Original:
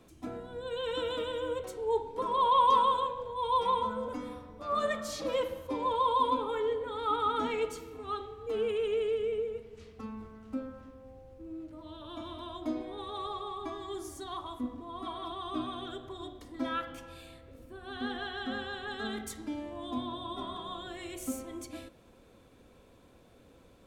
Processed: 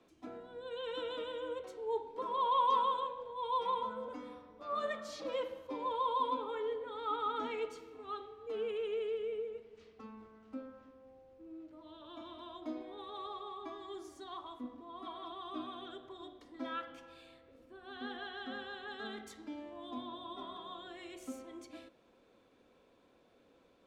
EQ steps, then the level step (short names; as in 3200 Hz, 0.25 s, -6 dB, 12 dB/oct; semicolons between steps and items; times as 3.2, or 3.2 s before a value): three-band isolator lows -13 dB, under 210 Hz, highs -13 dB, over 6100 Hz; -6.0 dB